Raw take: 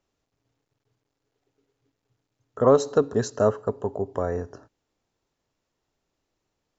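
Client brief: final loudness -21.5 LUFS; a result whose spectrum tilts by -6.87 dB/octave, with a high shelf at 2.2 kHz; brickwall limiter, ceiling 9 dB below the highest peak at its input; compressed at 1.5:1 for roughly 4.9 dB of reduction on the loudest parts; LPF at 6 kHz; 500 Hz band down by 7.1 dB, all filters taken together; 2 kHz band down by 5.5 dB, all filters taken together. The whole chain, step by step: low-pass 6 kHz; peaking EQ 500 Hz -8 dB; peaking EQ 2 kHz -4.5 dB; treble shelf 2.2 kHz -5.5 dB; compression 1.5:1, threshold -31 dBFS; trim +16.5 dB; peak limiter -7 dBFS

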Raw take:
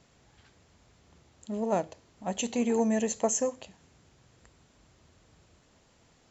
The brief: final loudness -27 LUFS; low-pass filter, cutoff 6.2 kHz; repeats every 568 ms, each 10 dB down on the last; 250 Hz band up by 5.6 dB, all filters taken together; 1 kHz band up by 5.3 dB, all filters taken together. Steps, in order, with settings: low-pass 6.2 kHz; peaking EQ 250 Hz +6 dB; peaking EQ 1 kHz +7 dB; feedback delay 568 ms, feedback 32%, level -10 dB

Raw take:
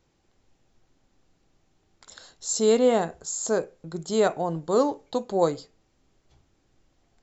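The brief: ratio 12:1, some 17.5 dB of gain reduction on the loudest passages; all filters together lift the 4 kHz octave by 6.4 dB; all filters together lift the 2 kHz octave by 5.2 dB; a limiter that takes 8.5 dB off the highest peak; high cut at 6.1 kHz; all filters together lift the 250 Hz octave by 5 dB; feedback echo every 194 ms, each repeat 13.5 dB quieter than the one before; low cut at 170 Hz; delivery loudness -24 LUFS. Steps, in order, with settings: high-pass 170 Hz; low-pass 6.1 kHz; peaking EQ 250 Hz +7 dB; peaking EQ 2 kHz +5.5 dB; peaking EQ 4 kHz +7 dB; compression 12:1, threshold -31 dBFS; peak limiter -28.5 dBFS; feedback delay 194 ms, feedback 21%, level -13.5 dB; trim +15 dB

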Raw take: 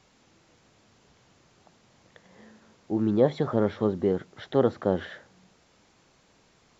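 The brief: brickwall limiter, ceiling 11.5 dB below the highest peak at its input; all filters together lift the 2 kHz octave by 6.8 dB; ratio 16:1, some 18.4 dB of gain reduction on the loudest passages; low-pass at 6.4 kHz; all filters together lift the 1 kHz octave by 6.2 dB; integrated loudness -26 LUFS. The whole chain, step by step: low-pass 6.4 kHz; peaking EQ 1 kHz +7 dB; peaking EQ 2 kHz +6 dB; compression 16:1, threshold -32 dBFS; trim +18.5 dB; peak limiter -12 dBFS

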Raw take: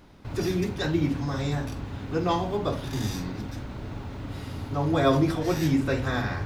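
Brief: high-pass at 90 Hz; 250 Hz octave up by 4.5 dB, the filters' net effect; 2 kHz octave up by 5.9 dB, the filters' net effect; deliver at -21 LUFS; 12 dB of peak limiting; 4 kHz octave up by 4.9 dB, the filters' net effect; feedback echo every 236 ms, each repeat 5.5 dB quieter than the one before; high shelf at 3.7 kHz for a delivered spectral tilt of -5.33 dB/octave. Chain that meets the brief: high-pass 90 Hz; peaking EQ 250 Hz +6 dB; peaking EQ 2 kHz +7.5 dB; treble shelf 3.7 kHz -4 dB; peaking EQ 4 kHz +6 dB; peak limiter -18 dBFS; feedback delay 236 ms, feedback 53%, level -5.5 dB; trim +6 dB

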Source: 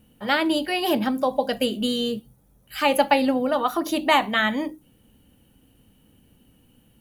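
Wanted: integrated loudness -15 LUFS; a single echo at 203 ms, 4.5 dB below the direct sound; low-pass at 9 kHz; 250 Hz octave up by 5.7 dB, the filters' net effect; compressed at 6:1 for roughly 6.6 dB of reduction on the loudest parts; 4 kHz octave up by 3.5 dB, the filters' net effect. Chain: low-pass 9 kHz; peaking EQ 250 Hz +6.5 dB; peaking EQ 4 kHz +5 dB; compression 6:1, threshold -19 dBFS; delay 203 ms -4.5 dB; trim +7.5 dB

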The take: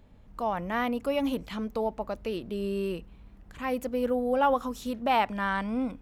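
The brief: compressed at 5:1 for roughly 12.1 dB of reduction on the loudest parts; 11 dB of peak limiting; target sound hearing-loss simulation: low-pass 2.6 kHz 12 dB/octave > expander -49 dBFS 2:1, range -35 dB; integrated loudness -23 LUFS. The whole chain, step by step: compression 5:1, threshold -34 dBFS; peak limiter -35 dBFS; low-pass 2.6 kHz 12 dB/octave; expander -49 dBFS 2:1, range -35 dB; trim +21 dB

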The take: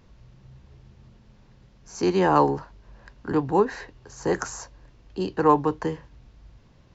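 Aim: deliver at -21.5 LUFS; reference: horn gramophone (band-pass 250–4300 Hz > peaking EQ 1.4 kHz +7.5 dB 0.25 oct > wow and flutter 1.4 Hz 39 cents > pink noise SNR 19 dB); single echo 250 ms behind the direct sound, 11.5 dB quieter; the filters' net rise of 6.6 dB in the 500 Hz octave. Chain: band-pass 250–4300 Hz; peaking EQ 500 Hz +8.5 dB; peaking EQ 1.4 kHz +7.5 dB 0.25 oct; delay 250 ms -11.5 dB; wow and flutter 1.4 Hz 39 cents; pink noise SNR 19 dB; trim -1.5 dB

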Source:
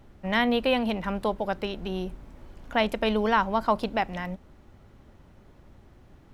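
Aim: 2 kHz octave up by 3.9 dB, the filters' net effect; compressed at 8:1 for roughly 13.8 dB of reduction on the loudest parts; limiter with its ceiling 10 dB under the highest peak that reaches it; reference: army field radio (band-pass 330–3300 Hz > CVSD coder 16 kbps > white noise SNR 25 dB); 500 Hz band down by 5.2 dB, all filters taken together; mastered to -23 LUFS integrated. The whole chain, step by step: peaking EQ 500 Hz -6 dB; peaking EQ 2 kHz +5.5 dB; compression 8:1, threshold -32 dBFS; peak limiter -31 dBFS; band-pass 330–3300 Hz; CVSD coder 16 kbps; white noise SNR 25 dB; trim +21.5 dB

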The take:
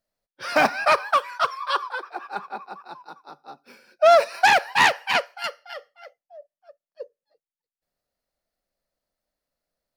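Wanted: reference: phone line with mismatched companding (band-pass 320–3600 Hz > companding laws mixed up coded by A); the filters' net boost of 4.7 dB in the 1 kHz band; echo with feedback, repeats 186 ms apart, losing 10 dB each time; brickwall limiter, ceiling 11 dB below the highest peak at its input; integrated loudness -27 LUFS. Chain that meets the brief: peaking EQ 1 kHz +6.5 dB; peak limiter -13.5 dBFS; band-pass 320–3600 Hz; feedback delay 186 ms, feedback 32%, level -10 dB; companding laws mixed up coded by A; trim -1 dB

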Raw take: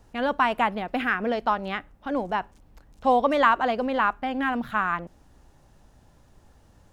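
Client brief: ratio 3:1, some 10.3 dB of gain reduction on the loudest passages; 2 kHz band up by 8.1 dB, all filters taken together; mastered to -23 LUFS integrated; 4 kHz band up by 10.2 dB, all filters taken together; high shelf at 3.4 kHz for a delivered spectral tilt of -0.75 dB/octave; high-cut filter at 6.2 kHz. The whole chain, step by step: low-pass 6.2 kHz; peaking EQ 2 kHz +7.5 dB; treble shelf 3.4 kHz +8.5 dB; peaking EQ 4 kHz +5.5 dB; compression 3:1, threshold -24 dBFS; trim +4.5 dB

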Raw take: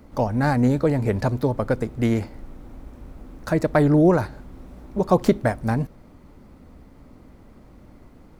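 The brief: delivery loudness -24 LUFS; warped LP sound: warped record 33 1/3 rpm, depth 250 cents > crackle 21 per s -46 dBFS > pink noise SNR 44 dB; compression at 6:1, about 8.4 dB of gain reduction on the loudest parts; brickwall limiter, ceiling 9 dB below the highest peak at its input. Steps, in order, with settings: compression 6:1, threshold -20 dBFS; peak limiter -18.5 dBFS; warped record 33 1/3 rpm, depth 250 cents; crackle 21 per s -46 dBFS; pink noise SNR 44 dB; trim +5 dB

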